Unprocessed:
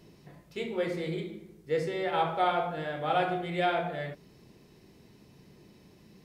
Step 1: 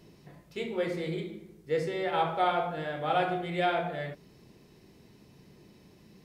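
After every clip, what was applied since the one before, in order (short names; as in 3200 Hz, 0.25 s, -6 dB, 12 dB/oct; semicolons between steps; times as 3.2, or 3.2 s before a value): nothing audible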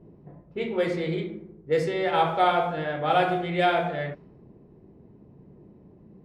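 low-pass opened by the level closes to 620 Hz, open at -25 dBFS; gain +5.5 dB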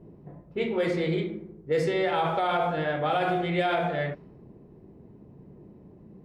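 limiter -18.5 dBFS, peak gain reduction 9.5 dB; gain +1.5 dB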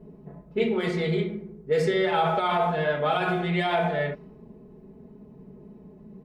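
comb 4.7 ms, depth 85%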